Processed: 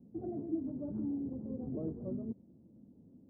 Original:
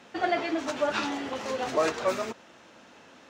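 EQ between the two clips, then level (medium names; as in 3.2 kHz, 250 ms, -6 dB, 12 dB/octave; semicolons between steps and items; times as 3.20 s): four-pole ladder low-pass 280 Hz, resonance 20%; +8.5 dB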